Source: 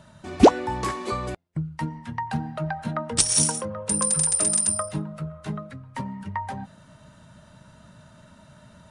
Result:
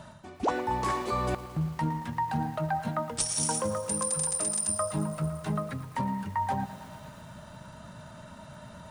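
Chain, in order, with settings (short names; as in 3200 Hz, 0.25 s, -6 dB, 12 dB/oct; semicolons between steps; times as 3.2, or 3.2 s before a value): bell 840 Hz +5 dB 1 oct; reverse; compressor 12:1, threshold -29 dBFS, peak gain reduction 23 dB; reverse; lo-fi delay 0.113 s, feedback 80%, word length 8-bit, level -15 dB; gain +3 dB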